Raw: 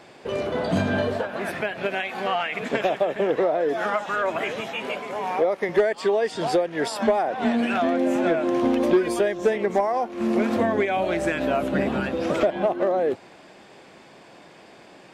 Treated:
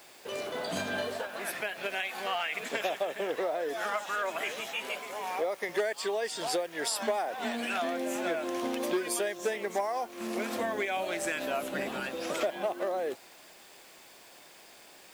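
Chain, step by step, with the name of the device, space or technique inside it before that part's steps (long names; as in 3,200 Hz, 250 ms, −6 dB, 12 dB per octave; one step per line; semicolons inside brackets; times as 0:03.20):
turntable without a phono preamp (RIAA equalisation recording; white noise bed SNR 26 dB)
level −7.5 dB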